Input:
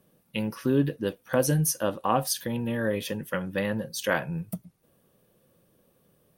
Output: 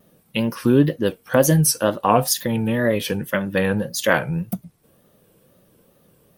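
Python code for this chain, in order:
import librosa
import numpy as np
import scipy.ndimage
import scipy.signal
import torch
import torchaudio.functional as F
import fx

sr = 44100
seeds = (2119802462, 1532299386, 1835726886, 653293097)

y = fx.wow_flutter(x, sr, seeds[0], rate_hz=2.1, depth_cents=120.0)
y = F.gain(torch.from_numpy(y), 8.0).numpy()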